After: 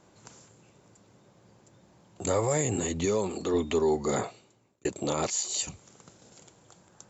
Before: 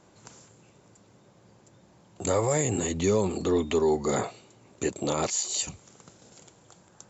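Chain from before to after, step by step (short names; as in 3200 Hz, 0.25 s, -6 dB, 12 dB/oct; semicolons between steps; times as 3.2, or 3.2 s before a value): 3.05–3.54 low shelf 190 Hz -9 dB; 4.17–4.85 fade out; gain -1.5 dB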